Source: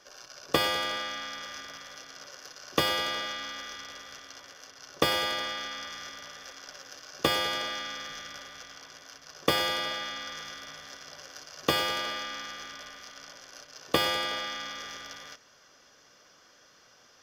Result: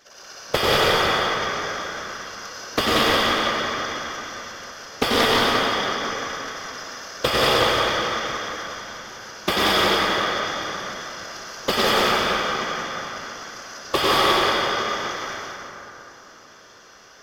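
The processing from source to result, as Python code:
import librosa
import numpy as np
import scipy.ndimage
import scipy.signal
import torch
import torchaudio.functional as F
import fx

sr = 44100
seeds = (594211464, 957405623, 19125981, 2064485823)

y = fx.whisperise(x, sr, seeds[0])
y = y + 10.0 ** (-5.0 / 20.0) * np.pad(y, (int(181 * sr / 1000.0), 0))[:len(y)]
y = fx.rev_plate(y, sr, seeds[1], rt60_s=3.2, hf_ratio=0.4, predelay_ms=80, drr_db=-6.0)
y = fx.doppler_dist(y, sr, depth_ms=0.21)
y = F.gain(torch.from_numpy(y), 3.0).numpy()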